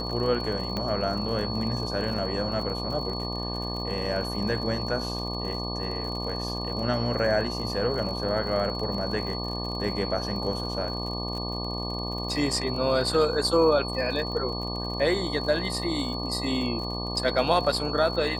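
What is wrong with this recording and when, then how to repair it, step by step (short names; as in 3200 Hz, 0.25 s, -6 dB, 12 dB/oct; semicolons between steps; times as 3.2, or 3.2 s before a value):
buzz 60 Hz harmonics 20 -33 dBFS
crackle 52/s -34 dBFS
tone 4400 Hz -34 dBFS
0.77 pop -17 dBFS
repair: de-click; notch 4400 Hz, Q 30; de-hum 60 Hz, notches 20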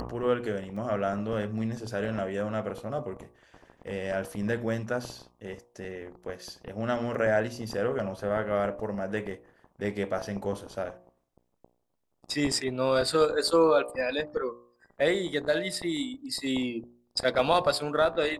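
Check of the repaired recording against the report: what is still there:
0.77 pop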